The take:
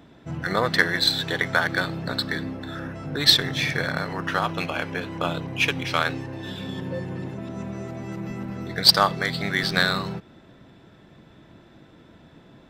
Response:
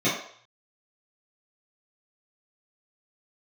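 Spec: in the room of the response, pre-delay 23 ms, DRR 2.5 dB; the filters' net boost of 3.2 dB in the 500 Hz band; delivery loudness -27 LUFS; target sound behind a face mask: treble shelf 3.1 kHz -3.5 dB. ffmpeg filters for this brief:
-filter_complex "[0:a]equalizer=f=500:t=o:g=4,asplit=2[s0][s1];[1:a]atrim=start_sample=2205,adelay=23[s2];[s1][s2]afir=irnorm=-1:irlink=0,volume=0.133[s3];[s0][s3]amix=inputs=2:normalize=0,highshelf=f=3100:g=-3.5,volume=0.596"

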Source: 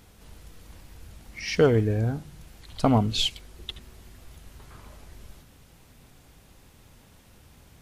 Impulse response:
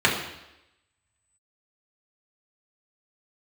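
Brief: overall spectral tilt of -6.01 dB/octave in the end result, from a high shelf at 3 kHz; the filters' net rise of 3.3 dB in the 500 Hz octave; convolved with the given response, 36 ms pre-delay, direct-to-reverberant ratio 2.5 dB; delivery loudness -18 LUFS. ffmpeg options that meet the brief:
-filter_complex "[0:a]equalizer=f=500:t=o:g=4,highshelf=f=3000:g=-6.5,asplit=2[s0][s1];[1:a]atrim=start_sample=2205,adelay=36[s2];[s1][s2]afir=irnorm=-1:irlink=0,volume=0.0841[s3];[s0][s3]amix=inputs=2:normalize=0,volume=1.41"

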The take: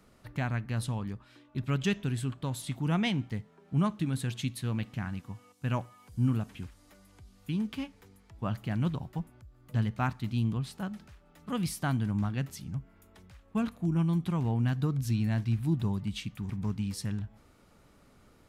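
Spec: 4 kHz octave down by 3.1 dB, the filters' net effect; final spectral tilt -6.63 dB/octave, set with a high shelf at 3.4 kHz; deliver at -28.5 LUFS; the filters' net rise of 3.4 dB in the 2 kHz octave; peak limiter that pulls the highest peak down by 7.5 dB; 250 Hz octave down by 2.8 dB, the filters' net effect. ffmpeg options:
-af "equalizer=f=250:t=o:g=-4,equalizer=f=2000:t=o:g=7,highshelf=f=3400:g=-4,equalizer=f=4000:t=o:g=-5,volume=2.11,alimiter=limit=0.133:level=0:latency=1"

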